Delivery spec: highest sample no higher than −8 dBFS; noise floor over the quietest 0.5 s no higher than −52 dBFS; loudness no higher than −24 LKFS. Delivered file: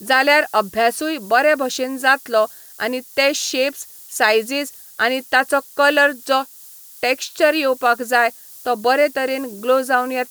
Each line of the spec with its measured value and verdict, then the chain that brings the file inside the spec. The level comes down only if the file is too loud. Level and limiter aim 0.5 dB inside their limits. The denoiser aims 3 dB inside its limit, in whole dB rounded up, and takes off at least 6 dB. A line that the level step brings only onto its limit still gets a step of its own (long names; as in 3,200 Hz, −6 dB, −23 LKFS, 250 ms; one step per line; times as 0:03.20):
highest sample −3.5 dBFS: out of spec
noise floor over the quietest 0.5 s −42 dBFS: out of spec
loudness −18.0 LKFS: out of spec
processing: broadband denoise 7 dB, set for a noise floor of −42 dBFS
level −6.5 dB